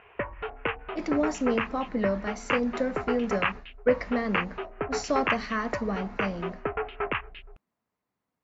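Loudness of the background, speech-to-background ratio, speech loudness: -33.0 LUFS, 3.0 dB, -30.0 LUFS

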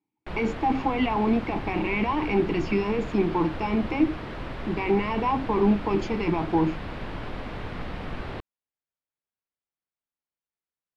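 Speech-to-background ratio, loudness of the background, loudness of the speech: 10.5 dB, -36.5 LUFS, -26.0 LUFS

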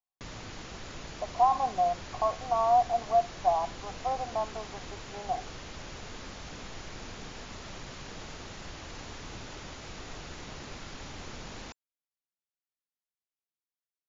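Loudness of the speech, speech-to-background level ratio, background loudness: -29.0 LUFS, 14.0 dB, -43.0 LUFS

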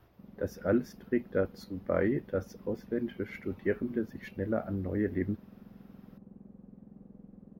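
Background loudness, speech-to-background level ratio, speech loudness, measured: -53.0 LUFS, 19.5 dB, -33.5 LUFS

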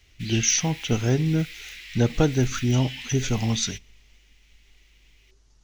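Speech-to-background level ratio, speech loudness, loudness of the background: 13.5 dB, -24.0 LUFS, -37.5 LUFS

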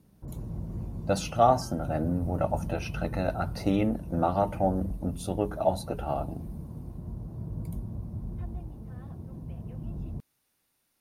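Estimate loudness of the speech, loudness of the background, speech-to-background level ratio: -29.0 LUFS, -39.0 LUFS, 10.0 dB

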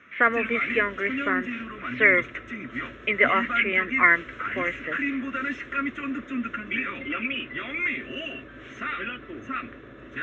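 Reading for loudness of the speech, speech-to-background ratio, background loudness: -23.0 LUFS, 7.5 dB, -30.5 LUFS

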